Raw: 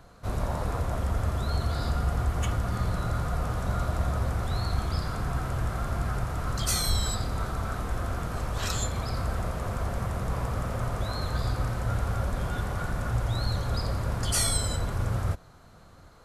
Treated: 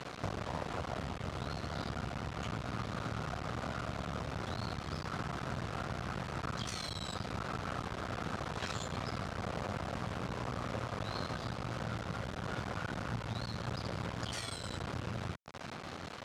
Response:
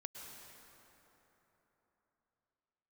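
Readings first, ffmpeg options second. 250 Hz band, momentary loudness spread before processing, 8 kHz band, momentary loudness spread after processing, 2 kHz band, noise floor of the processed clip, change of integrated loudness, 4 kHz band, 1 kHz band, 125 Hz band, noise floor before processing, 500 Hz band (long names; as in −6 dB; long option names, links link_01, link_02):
−5.0 dB, 5 LU, −16.0 dB, 2 LU, −4.0 dB, −45 dBFS, −9.5 dB, −7.5 dB, −5.5 dB, −11.5 dB, −52 dBFS, −6.0 dB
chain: -af "acompressor=threshold=-40dB:ratio=16,acrusher=bits=6:dc=4:mix=0:aa=0.000001,highpass=110,lowpass=4700,volume=12.5dB"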